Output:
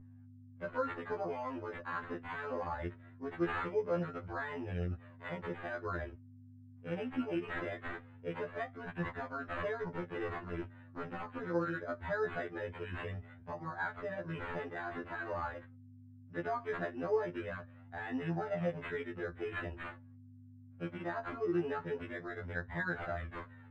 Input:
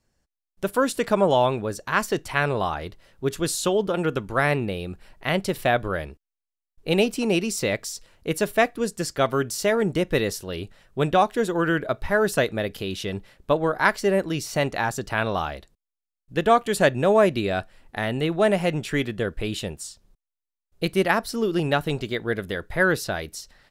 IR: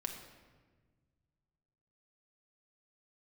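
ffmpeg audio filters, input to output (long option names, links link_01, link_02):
-filter_complex "[0:a]highpass=frequency=55:width=0.5412,highpass=frequency=55:width=1.3066,acompressor=threshold=-23dB:ratio=16,alimiter=limit=-21dB:level=0:latency=1:release=123,flanger=delay=4.8:depth=9.3:regen=-63:speed=0.57:shape=triangular,acrusher=samples=8:mix=1:aa=0.000001,asettb=1/sr,asplit=3[link_01][link_02][link_03];[link_01]atrim=end=9.824[link_04];[link_02]atrim=start=9.82:end=11.4,asetpts=PTS-STARTPTS,afade=type=in:duration=0.004:curve=qsin,afade=type=out:start_time=1.576:duration=0.004:curve=qsin,aeval=exprs='0.0282*(abs(mod(val(0)/0.0282+3,4)-2)-1)':channel_layout=same[link_05];[link_03]atrim=start=11.396[link_06];[link_04][link_05]acrossfade=duration=0.004:curve1=hsin:curve2=qsin[link_07];[link_07][link_06]acrossfade=duration=0.004:curve1=qsin:curve2=hsin,flanger=delay=1:depth=3.1:regen=35:speed=0.22:shape=triangular,aeval=exprs='val(0)+0.00355*(sin(2*PI*50*n/s)+sin(2*PI*2*50*n/s)/2+sin(2*PI*3*50*n/s)/3+sin(2*PI*4*50*n/s)/4+sin(2*PI*5*50*n/s)/5)':channel_layout=same,lowpass=frequency=1600:width_type=q:width=1.6,afftfilt=real='re*2*eq(mod(b,4),0)':imag='im*2*eq(mod(b,4),0)':win_size=2048:overlap=0.75,volume=3.5dB"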